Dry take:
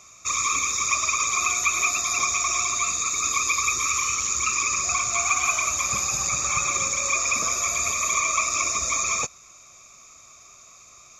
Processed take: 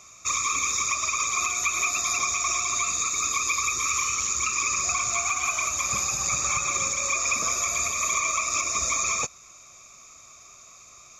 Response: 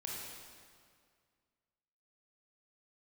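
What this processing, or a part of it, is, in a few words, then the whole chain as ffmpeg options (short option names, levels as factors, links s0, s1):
limiter into clipper: -af "alimiter=limit=0.188:level=0:latency=1:release=195,asoftclip=type=hard:threshold=0.168"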